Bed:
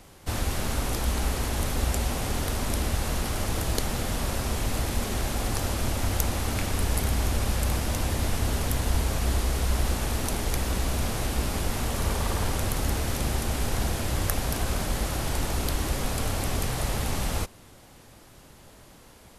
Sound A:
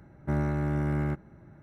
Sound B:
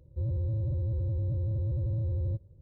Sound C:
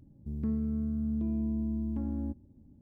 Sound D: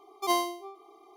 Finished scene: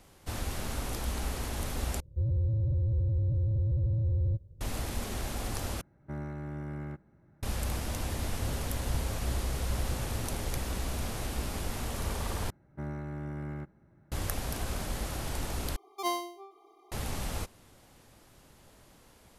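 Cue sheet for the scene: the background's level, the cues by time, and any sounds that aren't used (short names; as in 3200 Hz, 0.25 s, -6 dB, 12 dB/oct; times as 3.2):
bed -7 dB
2 replace with B -2 dB + low shelf 86 Hz +8.5 dB
5.81 replace with A -10.5 dB
8.22 add B -3.5 dB + fixed phaser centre 320 Hz, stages 6
12.5 replace with A -10 dB
15.76 replace with D -5 dB
not used: C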